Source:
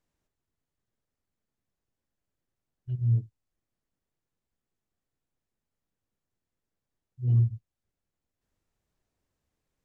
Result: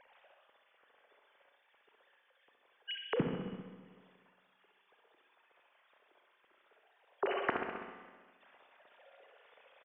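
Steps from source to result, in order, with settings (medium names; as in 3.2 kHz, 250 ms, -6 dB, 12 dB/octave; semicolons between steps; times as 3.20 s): formants replaced by sine waves; feedback delay 65 ms, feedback 48%, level -6 dB; compression 6:1, threshold -32 dBFS, peak gain reduction 19.5 dB; Schroeder reverb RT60 1.5 s, combs from 27 ms, DRR 4.5 dB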